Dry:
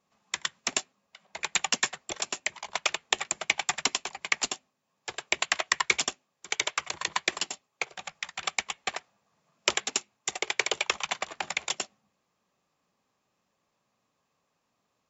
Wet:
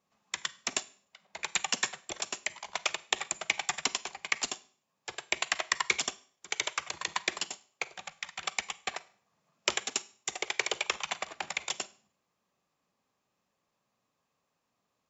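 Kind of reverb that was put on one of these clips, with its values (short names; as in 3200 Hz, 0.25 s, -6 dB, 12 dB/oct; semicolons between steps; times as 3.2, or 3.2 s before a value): Schroeder reverb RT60 0.46 s, combs from 33 ms, DRR 17.5 dB; gain -3.5 dB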